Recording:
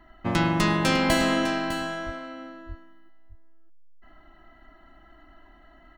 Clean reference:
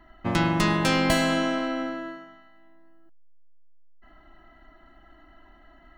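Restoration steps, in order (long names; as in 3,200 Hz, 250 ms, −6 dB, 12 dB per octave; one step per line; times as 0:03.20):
0:01.17–0:01.29: high-pass filter 140 Hz 24 dB per octave
0:02.05–0:02.17: high-pass filter 140 Hz 24 dB per octave
0:02.68–0:02.80: high-pass filter 140 Hz 24 dB per octave
echo removal 604 ms −10.5 dB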